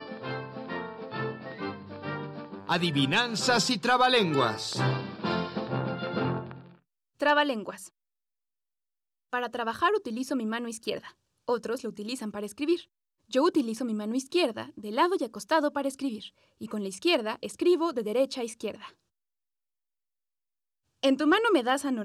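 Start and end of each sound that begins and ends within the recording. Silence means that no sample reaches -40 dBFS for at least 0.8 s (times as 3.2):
9.33–18.88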